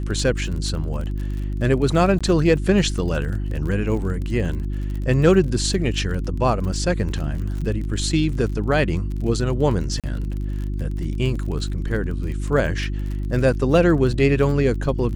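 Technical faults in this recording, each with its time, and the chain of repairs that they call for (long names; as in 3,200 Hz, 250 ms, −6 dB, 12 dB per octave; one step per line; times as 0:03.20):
surface crackle 38 per second −29 dBFS
mains hum 50 Hz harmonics 7 −25 dBFS
0:02.19–0:02.21: drop-out 16 ms
0:10.00–0:10.04: drop-out 37 ms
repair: click removal
hum removal 50 Hz, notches 7
repair the gap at 0:02.19, 16 ms
repair the gap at 0:10.00, 37 ms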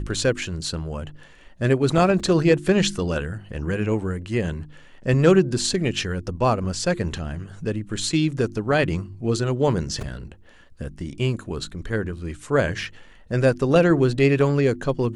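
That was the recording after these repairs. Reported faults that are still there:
none of them is left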